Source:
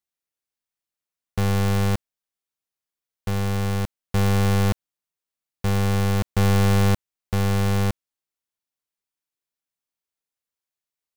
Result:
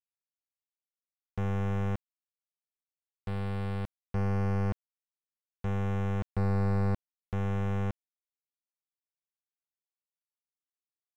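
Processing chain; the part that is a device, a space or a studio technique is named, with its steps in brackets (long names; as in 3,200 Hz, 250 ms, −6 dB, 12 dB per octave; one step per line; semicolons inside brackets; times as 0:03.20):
early transistor amplifier (dead-zone distortion −53 dBFS; slew-rate limiting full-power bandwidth 140 Hz)
level −9 dB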